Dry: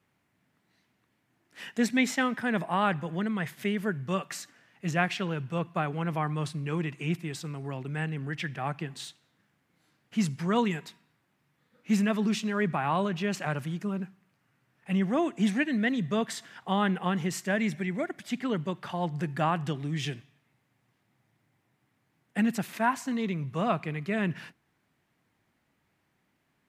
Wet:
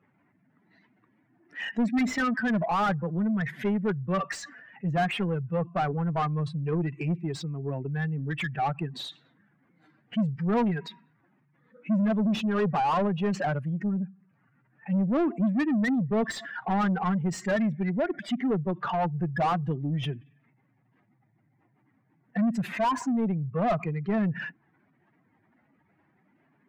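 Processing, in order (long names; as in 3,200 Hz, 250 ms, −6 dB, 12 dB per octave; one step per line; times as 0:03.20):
expanding power law on the bin magnitudes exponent 2.1
mid-hump overdrive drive 25 dB, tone 1,200 Hz, clips at −14.5 dBFS
level −2 dB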